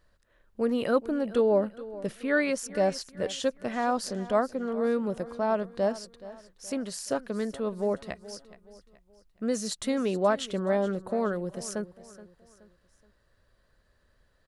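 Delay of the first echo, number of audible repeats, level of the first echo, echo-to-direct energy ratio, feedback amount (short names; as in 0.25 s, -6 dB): 0.424 s, 3, -17.0 dB, -16.5 dB, 40%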